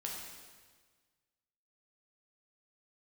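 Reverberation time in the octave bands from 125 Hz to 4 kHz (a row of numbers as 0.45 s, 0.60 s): 1.7 s, 1.6 s, 1.5 s, 1.5 s, 1.4 s, 1.4 s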